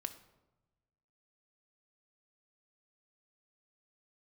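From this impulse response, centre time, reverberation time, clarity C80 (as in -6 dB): 8 ms, 1.1 s, 15.0 dB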